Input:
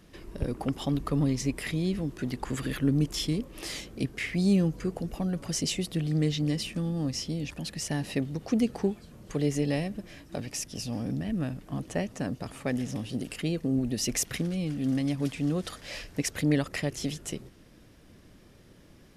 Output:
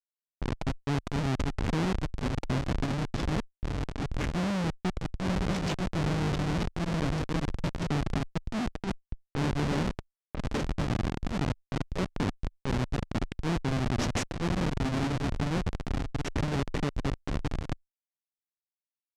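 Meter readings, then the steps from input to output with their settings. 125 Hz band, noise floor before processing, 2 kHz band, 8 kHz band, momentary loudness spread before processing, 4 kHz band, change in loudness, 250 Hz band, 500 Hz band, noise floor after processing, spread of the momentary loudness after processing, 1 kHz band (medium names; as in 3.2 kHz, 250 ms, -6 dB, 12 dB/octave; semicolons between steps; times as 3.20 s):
+0.5 dB, -55 dBFS, +1.0 dB, -9.5 dB, 9 LU, -3.0 dB, -1.5 dB, -3.0 dB, -1.0 dB, under -85 dBFS, 6 LU, +7.0 dB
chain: on a send: echo that smears into a reverb 1066 ms, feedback 46%, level -7 dB; on the sum: Schmitt trigger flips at -26.5 dBFS; Chebyshev shaper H 4 -11 dB, 6 -8 dB, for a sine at -23.5 dBFS; low-pass 6.3 kHz 12 dB/octave; level-controlled noise filter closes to 1.1 kHz, open at -28.5 dBFS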